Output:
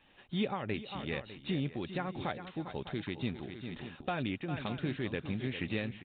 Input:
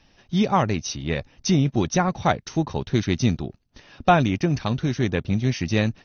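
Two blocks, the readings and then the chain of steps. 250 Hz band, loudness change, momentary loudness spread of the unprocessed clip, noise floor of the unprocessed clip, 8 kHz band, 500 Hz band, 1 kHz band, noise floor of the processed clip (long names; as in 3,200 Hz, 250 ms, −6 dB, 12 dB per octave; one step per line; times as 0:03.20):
−13.5 dB, −14.5 dB, 8 LU, −60 dBFS, can't be measured, −13.5 dB, −17.0 dB, −59 dBFS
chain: notch filter 670 Hz, Q 12
in parallel at 0 dB: brickwall limiter −14.5 dBFS, peak gain reduction 8.5 dB
on the sum: low-shelf EQ 210 Hz −11.5 dB
on a send: multi-tap delay 400/602 ms −12/−17 dB
on the sum: downward compressor 1.5 to 1, threshold −30 dBFS, peak gain reduction 7 dB
downsampling to 8,000 Hz
dynamic equaliser 980 Hz, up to −6 dB, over −38 dBFS, Q 1.3
amplitude modulation by smooth noise, depth 60%
level −5.5 dB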